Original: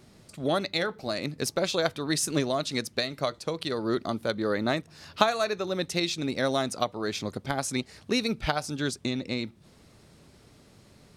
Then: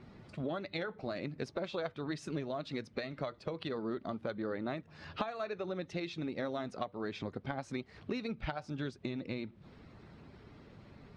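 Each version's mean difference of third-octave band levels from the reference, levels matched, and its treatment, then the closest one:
6.0 dB: spectral magnitudes quantised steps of 15 dB
low-pass filter 2,600 Hz 12 dB per octave
downward compressor 4 to 1, threshold −38 dBFS, peak gain reduction 18 dB
level +1.5 dB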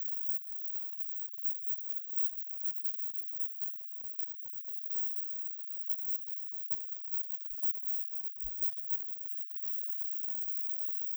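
26.0 dB: spike at every zero crossing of −11.5 dBFS
inverse Chebyshev band-stop filter 170–9,700 Hz, stop band 80 dB
low-shelf EQ 490 Hz +5.5 dB
level −5 dB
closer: first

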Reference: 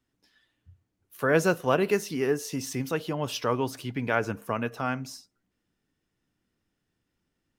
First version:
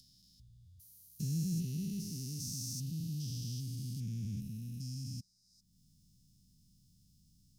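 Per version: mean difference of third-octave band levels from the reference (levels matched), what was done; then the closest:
16.0 dB: spectrum averaged block by block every 400 ms
elliptic band-stop filter 180–4,800 Hz, stop band 80 dB
upward compression, threshold −53 dBFS
level +1 dB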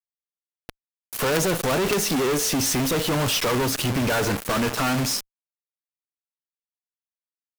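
11.5 dB: in parallel at +0.5 dB: downward compressor, threshold −34 dBFS, peak gain reduction 16 dB
on the sum: log-companded quantiser 2 bits
tube saturation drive 17 dB, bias 0.75
level +8 dB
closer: second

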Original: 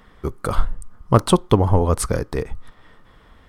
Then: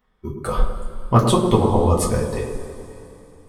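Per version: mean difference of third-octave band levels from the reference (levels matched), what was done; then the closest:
7.5 dB: noise reduction from a noise print of the clip's start 16 dB
on a send: feedback echo with a band-pass in the loop 106 ms, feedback 62%, band-pass 320 Hz, level −3 dB
on the sum: coupled-rooms reverb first 0.23 s, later 3.1 s, from −19 dB, DRR −4 dB
level −5.5 dB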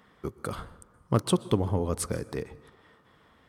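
3.0 dB: high-pass filter 110 Hz 12 dB per octave
dynamic equaliser 910 Hz, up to −7 dB, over −32 dBFS, Q 0.83
dense smooth reverb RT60 1.1 s, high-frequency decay 0.5×, pre-delay 110 ms, DRR 18.5 dB
level −7 dB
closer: second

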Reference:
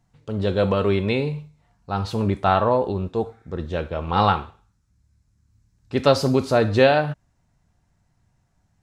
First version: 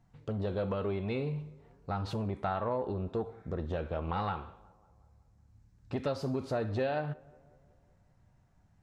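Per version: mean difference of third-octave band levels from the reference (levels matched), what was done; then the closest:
3.5 dB: high-shelf EQ 3,400 Hz −9.5 dB
downward compressor 6 to 1, threshold −29 dBFS, peak gain reduction 16.5 dB
on a send: tape delay 184 ms, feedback 63%, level −23.5 dB, low-pass 1,800 Hz
on the sum: saturating transformer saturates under 430 Hz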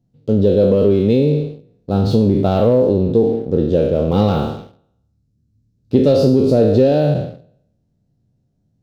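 6.5 dB: peak hold with a decay on every bin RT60 0.79 s
leveller curve on the samples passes 2
octave-band graphic EQ 125/250/500/1,000/2,000/4,000/8,000 Hz +8/+10/+11/−12/−9/+3/−7 dB
downward compressor 5 to 1, threshold −5 dBFS, peak gain reduction 9 dB
level −4.5 dB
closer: first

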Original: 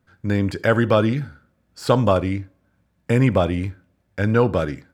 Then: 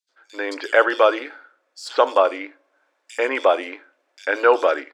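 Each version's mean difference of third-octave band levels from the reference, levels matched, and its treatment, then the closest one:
14.0 dB: multiband delay without the direct sound highs, lows 90 ms, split 3,900 Hz
automatic gain control
linear-phase brick-wall high-pass 260 Hz
three-way crossover with the lows and the highs turned down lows −22 dB, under 440 Hz, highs −18 dB, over 7,700 Hz
level +2 dB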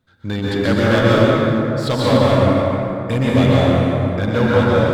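10.0 dB: delay that plays each chunk backwards 164 ms, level −8.5 dB
parametric band 3,700 Hz +13 dB 0.34 octaves
hard clipping −12.5 dBFS, distortion −13 dB
dense smooth reverb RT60 3.3 s, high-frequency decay 0.4×, pre-delay 115 ms, DRR −7 dB
level −2 dB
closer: second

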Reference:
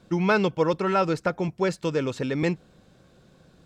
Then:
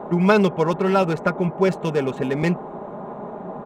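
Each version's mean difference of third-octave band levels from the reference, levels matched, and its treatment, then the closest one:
6.5 dB: adaptive Wiener filter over 9 samples
noise in a band 140–910 Hz −38 dBFS
comb filter 4.9 ms, depth 49%
level +3.5 dB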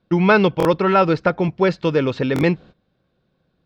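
4.0 dB: noise gate −46 dBFS, range −19 dB
low-pass filter 4,500 Hz 24 dB per octave
buffer that repeats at 0:00.58/0:02.34, samples 1,024, times 2
level +7.5 dB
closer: second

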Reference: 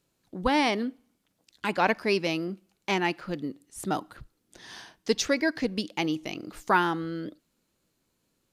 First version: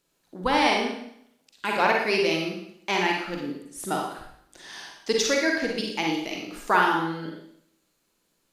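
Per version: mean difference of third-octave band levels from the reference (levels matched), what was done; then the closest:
6.5 dB: parametric band 99 Hz −9.5 dB 2.8 octaves
four-comb reverb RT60 0.71 s, DRR −0.5 dB
level +1.5 dB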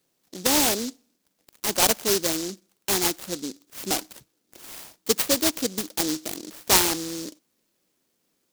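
10.5 dB: Bessel high-pass filter 330 Hz, order 2
short delay modulated by noise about 5,300 Hz, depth 0.25 ms
level +4.5 dB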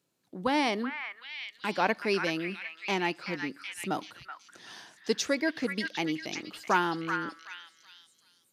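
3.5 dB: high-pass filter 130 Hz 12 dB per octave
on a send: echo through a band-pass that steps 378 ms, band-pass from 1,700 Hz, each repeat 0.7 octaves, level −2.5 dB
on the sum: level −3 dB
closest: third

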